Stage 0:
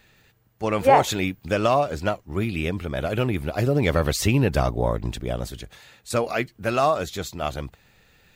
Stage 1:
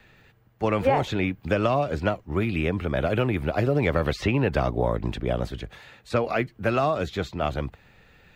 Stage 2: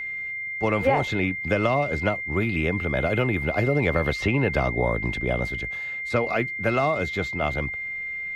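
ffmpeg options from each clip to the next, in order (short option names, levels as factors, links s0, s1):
-filter_complex "[0:a]bass=f=250:g=0,treble=f=4000:g=-12,acrossover=split=160|450|2300|5500[s0][s1][s2][s3][s4];[s0]acompressor=threshold=0.0251:ratio=4[s5];[s1]acompressor=threshold=0.0316:ratio=4[s6];[s2]acompressor=threshold=0.0398:ratio=4[s7];[s3]acompressor=threshold=0.01:ratio=4[s8];[s4]acompressor=threshold=0.001:ratio=4[s9];[s5][s6][s7][s8][s9]amix=inputs=5:normalize=0,volume=1.5"
-af "aeval=exprs='val(0)+0.0355*sin(2*PI*2100*n/s)':c=same"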